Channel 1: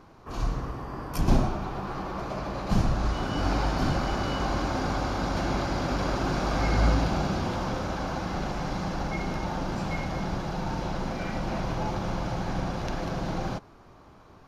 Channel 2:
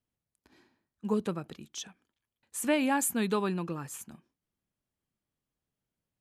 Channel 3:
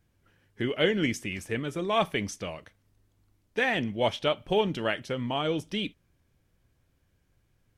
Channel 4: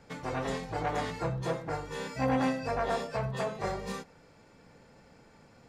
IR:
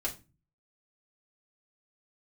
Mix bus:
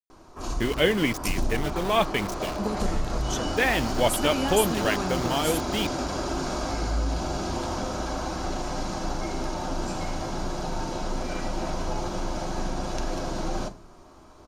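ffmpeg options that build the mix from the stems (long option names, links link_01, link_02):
-filter_complex "[0:a]equalizer=frequency=125:width_type=o:width=1:gain=-6,equalizer=frequency=2000:width_type=o:width=1:gain=-4,equalizer=frequency=8000:width_type=o:width=1:gain=11,acompressor=threshold=-27dB:ratio=6,adelay=100,volume=-2dB,asplit=2[link_01][link_02];[link_02]volume=-4.5dB[link_03];[1:a]highshelf=frequency=8200:gain=10.5,acompressor=threshold=-30dB:ratio=6,adelay=1550,volume=3dB[link_04];[2:a]asubboost=boost=3.5:cutoff=51,aeval=exprs='val(0)*gte(abs(val(0)),0.0211)':channel_layout=same,volume=3dB,asplit=2[link_05][link_06];[3:a]adelay=1900,volume=-4dB[link_07];[link_06]apad=whole_len=334645[link_08];[link_07][link_08]sidechaincompress=threshold=-38dB:ratio=8:attack=16:release=360[link_09];[4:a]atrim=start_sample=2205[link_10];[link_03][link_10]afir=irnorm=-1:irlink=0[link_11];[link_01][link_04][link_05][link_09][link_11]amix=inputs=5:normalize=0"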